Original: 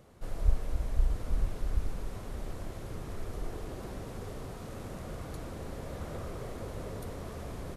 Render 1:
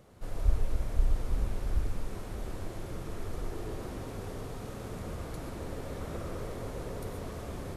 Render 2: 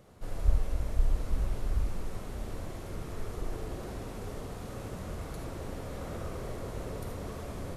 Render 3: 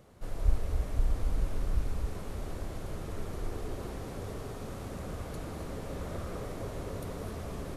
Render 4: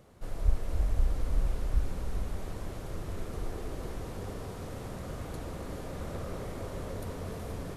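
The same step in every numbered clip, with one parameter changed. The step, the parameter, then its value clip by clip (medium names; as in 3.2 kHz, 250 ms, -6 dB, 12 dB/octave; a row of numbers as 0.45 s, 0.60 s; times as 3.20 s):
gated-style reverb, gate: 160 ms, 100 ms, 290 ms, 500 ms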